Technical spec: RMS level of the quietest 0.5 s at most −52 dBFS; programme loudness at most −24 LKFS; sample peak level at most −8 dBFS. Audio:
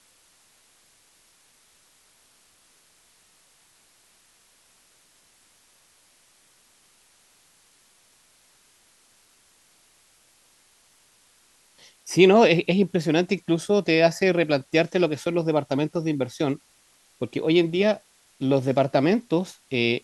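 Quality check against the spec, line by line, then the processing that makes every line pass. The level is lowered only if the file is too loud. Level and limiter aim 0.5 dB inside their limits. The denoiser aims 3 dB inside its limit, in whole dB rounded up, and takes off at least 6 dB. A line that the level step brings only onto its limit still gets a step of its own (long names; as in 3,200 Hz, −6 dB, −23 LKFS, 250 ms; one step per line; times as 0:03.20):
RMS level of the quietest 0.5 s −60 dBFS: in spec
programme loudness −22.5 LKFS: out of spec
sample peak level −3.5 dBFS: out of spec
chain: level −2 dB
brickwall limiter −8.5 dBFS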